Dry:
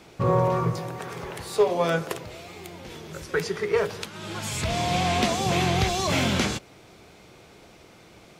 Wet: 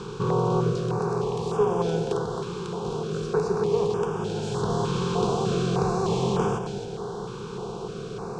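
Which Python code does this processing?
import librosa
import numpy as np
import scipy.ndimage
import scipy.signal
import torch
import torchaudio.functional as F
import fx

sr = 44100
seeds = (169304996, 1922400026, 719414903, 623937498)

p1 = fx.bin_compress(x, sr, power=0.4)
p2 = scipy.signal.sosfilt(scipy.signal.butter(4, 8200.0, 'lowpass', fs=sr, output='sos'), p1)
p3 = fx.high_shelf(p2, sr, hz=3700.0, db=-11.5)
p4 = fx.fixed_phaser(p3, sr, hz=400.0, stages=8)
p5 = p4 + fx.echo_single(p4, sr, ms=266, db=-8.5, dry=0)
p6 = fx.filter_held_notch(p5, sr, hz=3.3, low_hz=680.0, high_hz=4100.0)
y = p6 * librosa.db_to_amplitude(-3.0)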